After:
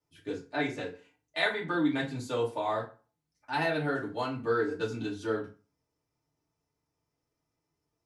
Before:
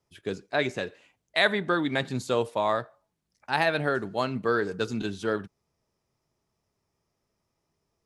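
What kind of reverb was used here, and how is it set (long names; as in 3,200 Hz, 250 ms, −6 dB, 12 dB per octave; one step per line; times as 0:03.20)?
feedback delay network reverb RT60 0.33 s, low-frequency decay 1.1×, high-frequency decay 0.75×, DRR −6 dB
level −12 dB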